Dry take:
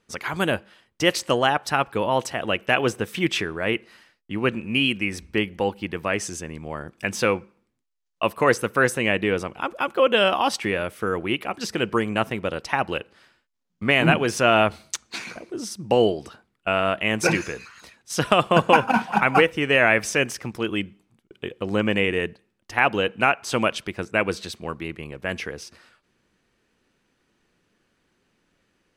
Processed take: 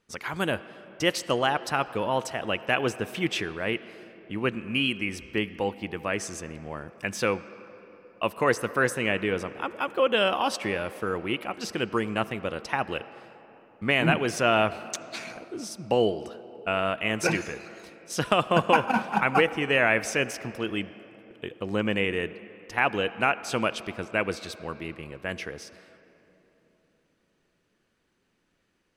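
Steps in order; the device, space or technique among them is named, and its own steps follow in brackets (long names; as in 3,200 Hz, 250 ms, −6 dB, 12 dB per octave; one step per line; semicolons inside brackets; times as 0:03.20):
filtered reverb send (on a send: high-pass filter 210 Hz 12 dB per octave + low-pass filter 4,900 Hz 12 dB per octave + convolution reverb RT60 3.8 s, pre-delay 67 ms, DRR 15 dB)
on the sum: level −4.5 dB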